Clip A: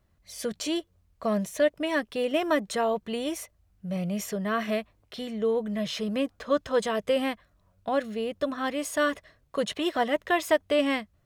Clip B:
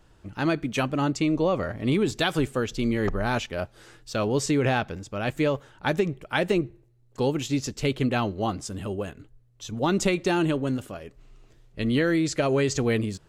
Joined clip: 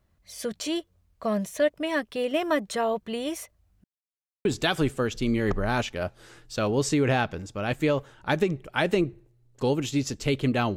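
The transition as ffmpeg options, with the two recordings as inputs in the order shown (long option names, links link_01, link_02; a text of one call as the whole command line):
ffmpeg -i cue0.wav -i cue1.wav -filter_complex "[0:a]apad=whole_dur=10.76,atrim=end=10.76,asplit=2[link_01][link_02];[link_01]atrim=end=3.84,asetpts=PTS-STARTPTS,afade=type=out:start_time=3.836:duration=0.004:curve=hsin[link_03];[link_02]atrim=start=3.84:end=4.45,asetpts=PTS-STARTPTS,volume=0[link_04];[1:a]atrim=start=2.02:end=8.33,asetpts=PTS-STARTPTS,afade=type=in:duration=0.004:curve=hsin[link_05];[link_03][link_04][link_05]concat=n=3:v=0:a=1" out.wav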